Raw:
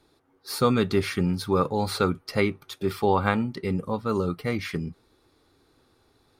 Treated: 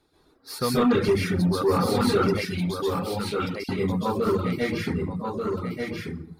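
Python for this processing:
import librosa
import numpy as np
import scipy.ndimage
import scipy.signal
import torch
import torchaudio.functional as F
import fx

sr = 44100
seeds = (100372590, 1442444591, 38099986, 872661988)

y = fx.rev_plate(x, sr, seeds[0], rt60_s=0.81, hf_ratio=0.55, predelay_ms=120, drr_db=-8.0)
y = 10.0 ** (-9.5 / 20.0) * np.tanh(y / 10.0 ** (-9.5 / 20.0))
y = fx.steep_highpass(y, sr, hz=2400.0, slope=48, at=(2.45, 3.69))
y = y + 10.0 ** (-4.5 / 20.0) * np.pad(y, (int(1186 * sr / 1000.0), 0))[:len(y)]
y = fx.dereverb_blind(y, sr, rt60_s=0.75)
y = y * 10.0 ** (-4.0 / 20.0)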